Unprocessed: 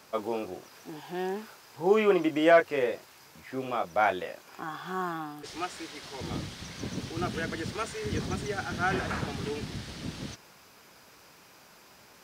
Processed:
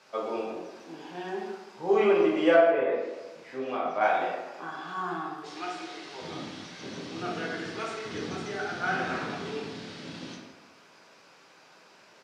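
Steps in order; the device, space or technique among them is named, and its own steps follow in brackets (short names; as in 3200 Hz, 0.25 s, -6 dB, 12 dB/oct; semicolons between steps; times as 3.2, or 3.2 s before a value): 2.54–4.01 treble ducked by the level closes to 890 Hz, closed at -20 dBFS; supermarket ceiling speaker (BPF 260–6100 Hz; reverb RT60 1.2 s, pre-delay 3 ms, DRR -4.5 dB); echo 0.164 s -18 dB; gain -5 dB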